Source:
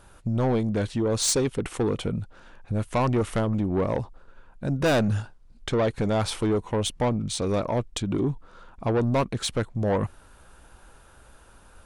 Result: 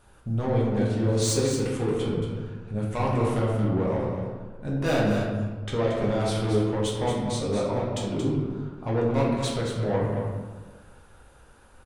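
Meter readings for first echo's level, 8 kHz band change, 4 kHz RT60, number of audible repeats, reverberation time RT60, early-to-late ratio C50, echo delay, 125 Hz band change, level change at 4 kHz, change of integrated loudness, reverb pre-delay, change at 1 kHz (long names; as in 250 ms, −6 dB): −7.5 dB, −3.5 dB, 0.80 s, 1, 1.4 s, 0.5 dB, 227 ms, +1.0 dB, −2.5 dB, −0.5 dB, 5 ms, −1.0 dB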